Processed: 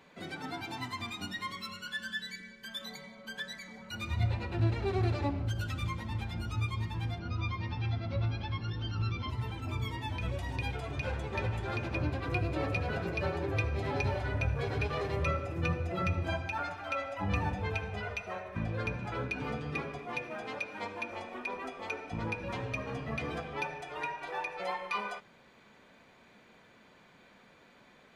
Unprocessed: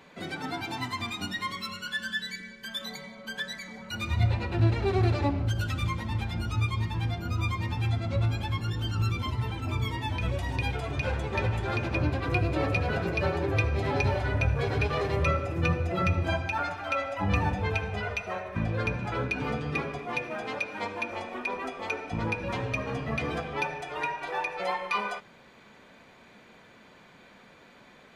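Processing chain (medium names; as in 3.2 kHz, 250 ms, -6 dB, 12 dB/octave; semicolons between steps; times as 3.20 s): 7.19–9.30 s: steep low-pass 5.9 kHz 72 dB/octave; trim -5.5 dB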